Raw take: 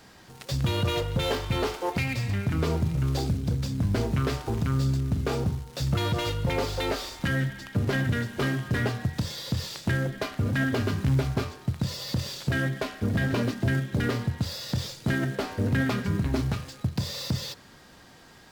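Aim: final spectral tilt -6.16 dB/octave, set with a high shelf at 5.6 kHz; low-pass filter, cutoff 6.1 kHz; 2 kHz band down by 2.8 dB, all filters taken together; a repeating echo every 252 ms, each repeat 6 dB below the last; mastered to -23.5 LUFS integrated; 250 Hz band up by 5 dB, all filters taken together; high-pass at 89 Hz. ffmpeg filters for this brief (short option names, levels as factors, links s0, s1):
-af "highpass=89,lowpass=6100,equalizer=f=250:t=o:g=6.5,equalizer=f=2000:t=o:g=-4.5,highshelf=f=5600:g=7,aecho=1:1:252|504|756|1008|1260|1512:0.501|0.251|0.125|0.0626|0.0313|0.0157,volume=1.26"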